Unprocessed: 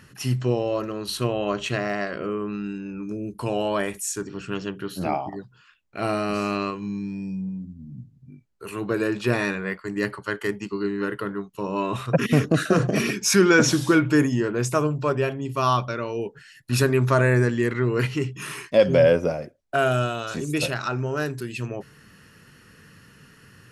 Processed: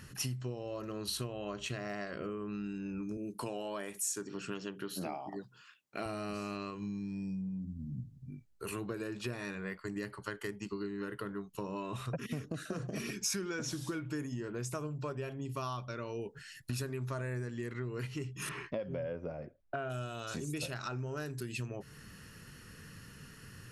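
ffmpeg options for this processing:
-filter_complex "[0:a]asettb=1/sr,asplit=3[a][b][c];[a]atrim=end=3.174[d];[b]atrim=start=3.17:end=6.06,asetpts=PTS-STARTPTS,afade=t=in:d=0.004:c=qsin,afade=t=out:st=2.886:d=0.004:c=qsin,highpass=200[e];[c]atrim=start=6.056[f];[d][e]acrossfade=d=0.004:c1=hsin:c2=qsin[g];[g][f]acrossfade=d=0.004:c1=qsin:c2=hsin,asettb=1/sr,asplit=3[h][i][j];[h]atrim=end=18.494[k];[i]atrim=start=18.49:end=19.9,asetpts=PTS-STARTPTS,afade=t=in:d=0.004:c=qsin,afade=t=out:st=1.406:d=0.004:c=qsin,lowpass=2.2k[l];[j]atrim=start=19.896[m];[k][l]acrossfade=d=0.004:c1=hsin:c2=qsin[n];[n][m]acrossfade=d=0.004:c1=qsin:c2=hsin,lowshelf=f=75:g=9.5,acompressor=threshold=-33dB:ratio=8,bass=f=250:g=1,treble=f=4k:g=5,volume=-3.5dB"

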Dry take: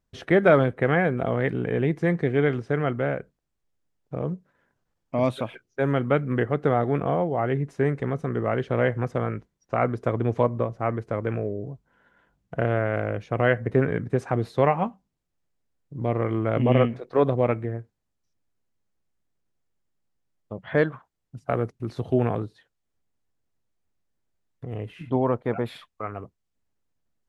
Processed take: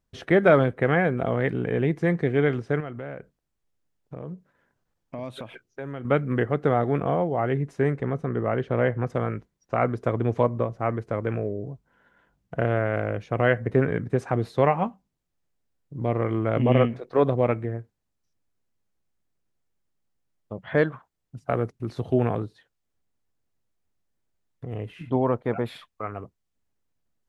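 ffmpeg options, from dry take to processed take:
-filter_complex "[0:a]asettb=1/sr,asplit=3[a][b][c];[a]atrim=end=2.804[d];[b]atrim=start=2.8:end=6.05,asetpts=PTS-STARTPTS,afade=t=in:d=0.004:c=qsin,afade=t=out:st=3.246:d=0.004:c=qsin,acompressor=threshold=-34dB:ratio=3:attack=3.2:release=140:knee=1:detection=peak[e];[c]atrim=start=6.046[f];[d][e]acrossfade=d=0.004:c1=hsin:c2=qsin[g];[g][f]acrossfade=d=0.004:c1=qsin:c2=hsin,asettb=1/sr,asplit=3[h][i][j];[h]atrim=end=7.964[k];[i]atrim=start=7.96:end=9.1,asetpts=PTS-STARTPTS,afade=t=in:d=0.004:c=qsin,afade=t=out:st=1.136:d=0.004:c=qsin,highshelf=f=3.5k:g=-8.5[l];[j]atrim=start=9.096[m];[k][l]acrossfade=d=0.004:c1=hsin:c2=qsin[n];[n][m]acrossfade=d=0.004:c1=qsin:c2=hsin"

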